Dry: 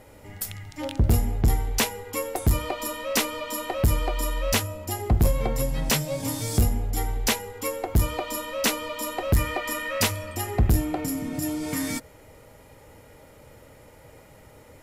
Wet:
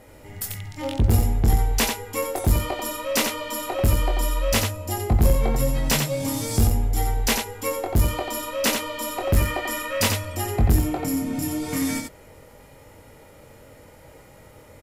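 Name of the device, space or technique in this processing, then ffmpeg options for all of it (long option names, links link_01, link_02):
slapback doubling: -filter_complex "[0:a]asplit=3[link_01][link_02][link_03];[link_02]adelay=22,volume=-4.5dB[link_04];[link_03]adelay=89,volume=-5dB[link_05];[link_01][link_04][link_05]amix=inputs=3:normalize=0"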